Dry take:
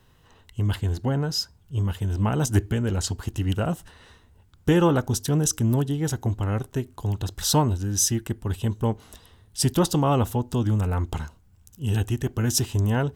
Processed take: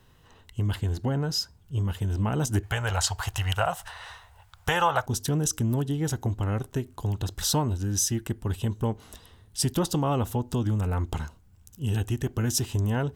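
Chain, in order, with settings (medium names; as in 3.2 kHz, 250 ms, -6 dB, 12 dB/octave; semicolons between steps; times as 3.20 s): 2.63–5.06 s: FFT filter 110 Hz 0 dB, 280 Hz -20 dB, 730 Hz +13 dB, 6.3 kHz +7 dB; compression 2:1, threshold -25 dBFS, peak gain reduction 8.5 dB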